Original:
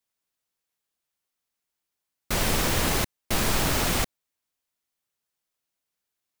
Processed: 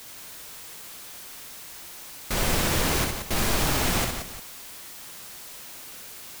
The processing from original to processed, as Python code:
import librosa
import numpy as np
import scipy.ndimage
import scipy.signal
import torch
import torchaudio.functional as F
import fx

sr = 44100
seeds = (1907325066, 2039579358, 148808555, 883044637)

y = x + 0.5 * 10.0 ** (-34.5 / 20.0) * np.sign(x)
y = fx.echo_multitap(y, sr, ms=(64, 177, 351), db=(-4.5, -7.5, -15.5))
y = F.gain(torch.from_numpy(y), -2.5).numpy()